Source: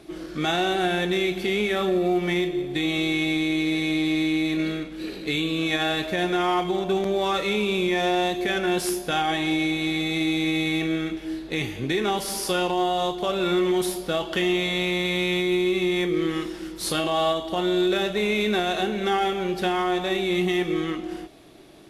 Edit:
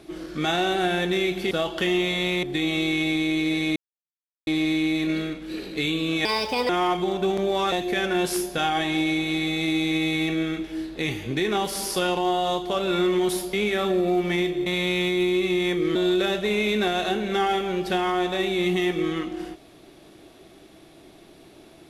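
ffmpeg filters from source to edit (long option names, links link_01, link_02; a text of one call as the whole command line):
ffmpeg -i in.wav -filter_complex "[0:a]asplit=10[link_01][link_02][link_03][link_04][link_05][link_06][link_07][link_08][link_09][link_10];[link_01]atrim=end=1.512[link_11];[link_02]atrim=start=14.058:end=14.982[link_12];[link_03]atrim=start=2.638:end=3.97,asetpts=PTS-STARTPTS,afade=type=out:start_time=1.328:duration=0.004:curve=hsin,apad=pad_dur=0.71[link_13];[link_04]atrim=start=3.97:end=5.754,asetpts=PTS-STARTPTS,afade=type=in:duration=0.004:curve=hsin[link_14];[link_05]atrim=start=5.75:end=6.36,asetpts=PTS-STARTPTS,asetrate=60858,aresample=44100,atrim=end_sample=19493,asetpts=PTS-STARTPTS[link_15];[link_06]atrim=start=6.356:end=7.392[link_16];[link_07]atrim=start=8.248:end=14.062[link_17];[link_08]atrim=start=1.508:end=2.642[link_18];[link_09]atrim=start=14.978:end=16.272[link_19];[link_10]atrim=start=17.668[link_20];[link_11][link_12]acrossfade=duration=0.004:curve1=hsin:curve2=hsin[link_21];[link_13][link_14]concat=n=2:v=0:a=1[link_22];[link_21][link_22]acrossfade=duration=0.004:curve1=hsin:curve2=hsin[link_23];[link_23][link_15]acrossfade=duration=0.004:curve1=hsin:curve2=hsin[link_24];[link_24][link_16]acrossfade=duration=0.004:curve1=hsin:curve2=hsin[link_25];[link_25][link_17]acrossfade=duration=0.004:curve1=hsin:curve2=hsin[link_26];[link_26][link_18]acrossfade=duration=0.004:curve1=hsin:curve2=hsin[link_27];[link_27][link_19]acrossfade=duration=0.004:curve1=hsin:curve2=hsin[link_28];[link_28][link_20]acrossfade=duration=0.004:curve1=hsin:curve2=hsin" out.wav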